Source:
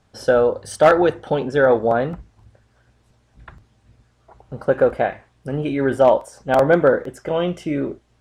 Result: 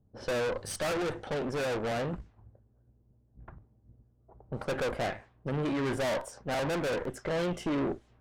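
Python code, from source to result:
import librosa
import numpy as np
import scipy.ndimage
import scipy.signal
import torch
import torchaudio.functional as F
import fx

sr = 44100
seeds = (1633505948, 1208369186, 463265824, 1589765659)

y = fx.tube_stage(x, sr, drive_db=29.0, bias=0.75)
y = fx.rider(y, sr, range_db=10, speed_s=2.0)
y = fx.env_lowpass(y, sr, base_hz=300.0, full_db=-33.5)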